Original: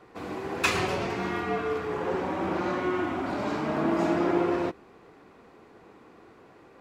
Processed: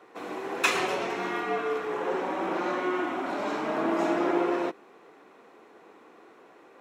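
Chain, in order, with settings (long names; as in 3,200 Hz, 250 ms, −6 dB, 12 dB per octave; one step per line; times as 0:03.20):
high-pass filter 310 Hz 12 dB per octave
notch filter 4,700 Hz, Q 9.8
level +1 dB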